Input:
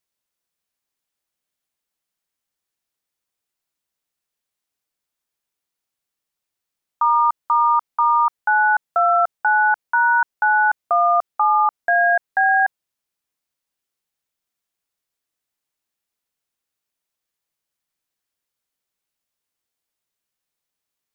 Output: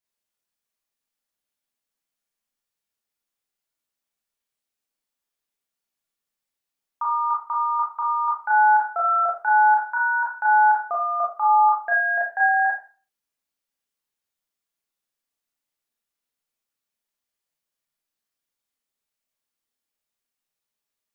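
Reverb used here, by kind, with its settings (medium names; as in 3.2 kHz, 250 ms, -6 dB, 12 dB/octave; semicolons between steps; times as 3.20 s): Schroeder reverb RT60 0.37 s, combs from 27 ms, DRR -4.5 dB; trim -8.5 dB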